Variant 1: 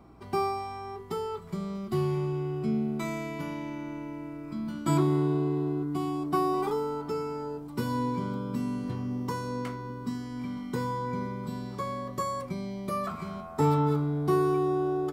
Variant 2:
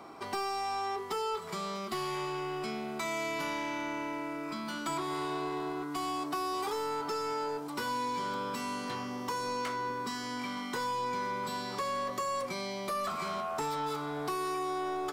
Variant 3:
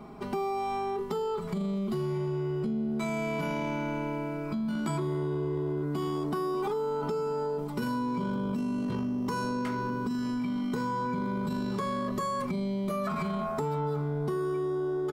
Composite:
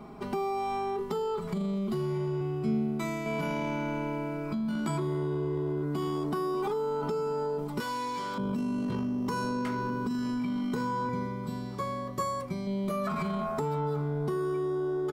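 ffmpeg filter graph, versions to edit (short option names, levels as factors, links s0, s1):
-filter_complex "[0:a]asplit=2[s0][s1];[2:a]asplit=4[s2][s3][s4][s5];[s2]atrim=end=2.412[s6];[s0]atrim=start=2.408:end=3.262[s7];[s3]atrim=start=3.258:end=7.802[s8];[1:a]atrim=start=7.798:end=8.382[s9];[s4]atrim=start=8.378:end=11.092[s10];[s1]atrim=start=11.088:end=12.672[s11];[s5]atrim=start=12.668[s12];[s6][s7]acrossfade=d=0.004:c1=hsin:c2=hsin[s13];[s13][s8]acrossfade=d=0.004:c1=hsin:c2=hsin[s14];[s14][s9]acrossfade=d=0.004:c1=hsin:c2=hsin[s15];[s15][s10]acrossfade=d=0.004:c1=hsin:c2=hsin[s16];[s16][s11]acrossfade=d=0.004:c1=hsin:c2=hsin[s17];[s17][s12]acrossfade=d=0.004:c1=hsin:c2=hsin"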